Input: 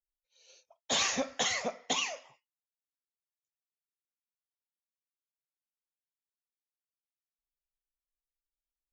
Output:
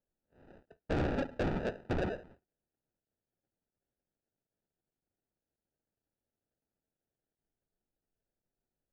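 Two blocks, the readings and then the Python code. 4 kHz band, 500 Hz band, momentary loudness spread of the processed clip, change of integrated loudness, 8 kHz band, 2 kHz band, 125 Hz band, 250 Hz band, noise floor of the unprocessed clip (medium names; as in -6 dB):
-20.0 dB, +2.5 dB, 5 LU, -4.5 dB, under -30 dB, -7.0 dB, +16.5 dB, +6.0 dB, under -85 dBFS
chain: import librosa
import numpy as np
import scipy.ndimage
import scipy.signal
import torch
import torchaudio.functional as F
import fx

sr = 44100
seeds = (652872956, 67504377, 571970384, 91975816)

y = fx.sample_hold(x, sr, seeds[0], rate_hz=1100.0, jitter_pct=0)
y = scipy.signal.sosfilt(scipy.signal.butter(2, 1900.0, 'lowpass', fs=sr, output='sos'), y)
y = 10.0 ** (-30.5 / 20.0) * np.tanh(y / 10.0 ** (-30.5 / 20.0))
y = F.gain(torch.from_numpy(y), 3.5).numpy()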